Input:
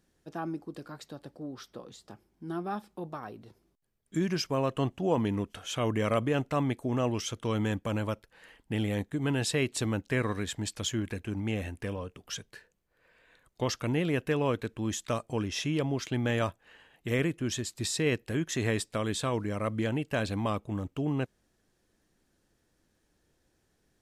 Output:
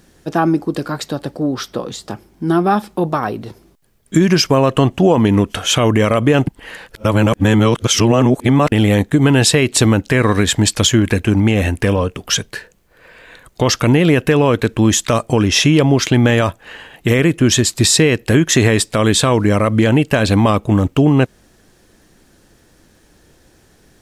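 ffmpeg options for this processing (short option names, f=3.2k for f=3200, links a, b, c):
-filter_complex "[0:a]asplit=3[a][b][c];[a]atrim=end=6.472[d];[b]atrim=start=6.468:end=8.722,asetpts=PTS-STARTPTS,areverse[e];[c]atrim=start=8.718[f];[d][e]acrossfade=d=0.004:c1=hsin:c2=hsin[g];[g][f]acrossfade=d=0.004:c1=hsin:c2=hsin,acompressor=threshold=-29dB:ratio=6,alimiter=level_in=22.5dB:limit=-1dB:release=50:level=0:latency=1,volume=-1dB"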